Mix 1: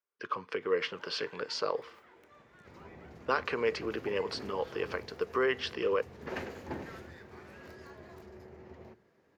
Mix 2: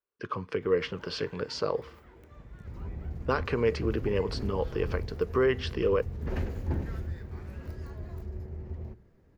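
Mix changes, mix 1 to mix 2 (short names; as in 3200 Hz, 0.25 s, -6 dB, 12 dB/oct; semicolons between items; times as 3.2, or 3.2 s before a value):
second sound -3.0 dB; master: remove weighting filter A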